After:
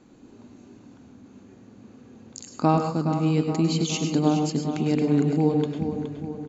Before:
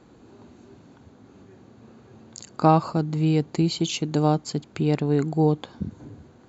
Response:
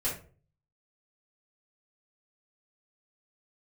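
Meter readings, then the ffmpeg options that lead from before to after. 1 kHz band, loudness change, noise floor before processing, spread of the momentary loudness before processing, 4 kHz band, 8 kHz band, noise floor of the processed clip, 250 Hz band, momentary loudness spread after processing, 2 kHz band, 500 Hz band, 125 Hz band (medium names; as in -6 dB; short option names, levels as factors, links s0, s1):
-3.0 dB, -0.5 dB, -53 dBFS, 16 LU, -1.0 dB, no reading, -52 dBFS, +1.5 dB, 10 LU, -0.5 dB, -1.0 dB, -1.5 dB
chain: -filter_complex "[0:a]equalizer=f=250:t=o:w=0.67:g=8,equalizer=f=2500:t=o:w=0.67:g=4,equalizer=f=6300:t=o:w=0.67:g=7,asplit=2[s0][s1];[s1]adelay=419,lowpass=f=3600:p=1,volume=0.398,asplit=2[s2][s3];[s3]adelay=419,lowpass=f=3600:p=1,volume=0.54,asplit=2[s4][s5];[s5]adelay=419,lowpass=f=3600:p=1,volume=0.54,asplit=2[s6][s7];[s7]adelay=419,lowpass=f=3600:p=1,volume=0.54,asplit=2[s8][s9];[s9]adelay=419,lowpass=f=3600:p=1,volume=0.54,asplit=2[s10][s11];[s11]adelay=419,lowpass=f=3600:p=1,volume=0.54[s12];[s0][s2][s4][s6][s8][s10][s12]amix=inputs=7:normalize=0,asplit=2[s13][s14];[1:a]atrim=start_sample=2205,atrim=end_sample=3087,adelay=96[s15];[s14][s15]afir=irnorm=-1:irlink=0,volume=0.299[s16];[s13][s16]amix=inputs=2:normalize=0,volume=0.562"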